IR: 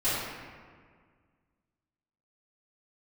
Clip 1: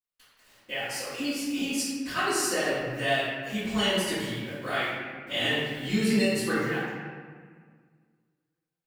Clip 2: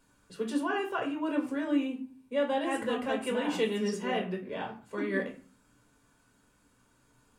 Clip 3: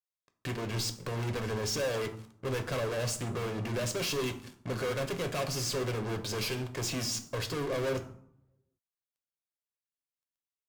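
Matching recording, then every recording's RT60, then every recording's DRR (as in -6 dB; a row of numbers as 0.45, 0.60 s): 1; 1.8, 0.40, 0.70 s; -15.5, 0.5, 7.0 dB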